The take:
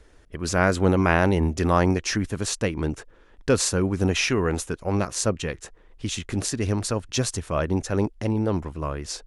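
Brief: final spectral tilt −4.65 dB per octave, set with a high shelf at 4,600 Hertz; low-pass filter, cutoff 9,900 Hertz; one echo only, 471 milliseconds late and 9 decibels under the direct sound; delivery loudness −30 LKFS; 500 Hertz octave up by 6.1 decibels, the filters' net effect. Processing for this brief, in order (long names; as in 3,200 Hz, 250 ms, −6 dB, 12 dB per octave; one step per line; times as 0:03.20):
low-pass filter 9,900 Hz
parametric band 500 Hz +7.5 dB
high-shelf EQ 4,600 Hz +5.5 dB
single-tap delay 471 ms −9 dB
level −9 dB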